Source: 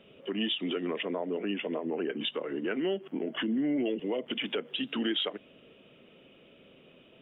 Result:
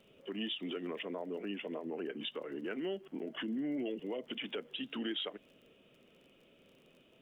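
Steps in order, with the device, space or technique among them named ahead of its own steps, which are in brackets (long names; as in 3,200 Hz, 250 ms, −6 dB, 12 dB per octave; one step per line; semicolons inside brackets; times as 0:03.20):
vinyl LP (surface crackle 30 per second −47 dBFS; pink noise bed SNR 41 dB)
level −7.5 dB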